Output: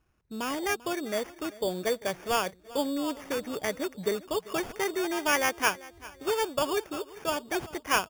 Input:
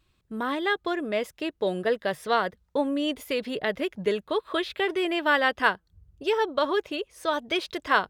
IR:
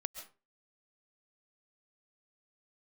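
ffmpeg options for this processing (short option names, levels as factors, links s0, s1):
-filter_complex "[0:a]asplit=2[s0][s1];[s1]adelay=393,lowpass=f=2800:p=1,volume=0.112,asplit=2[s2][s3];[s3]adelay=393,lowpass=f=2800:p=1,volume=0.44,asplit=2[s4][s5];[s5]adelay=393,lowpass=f=2800:p=1,volume=0.44[s6];[s0][s2][s4][s6]amix=inputs=4:normalize=0,acrusher=samples=11:mix=1:aa=0.000001,volume=0.668"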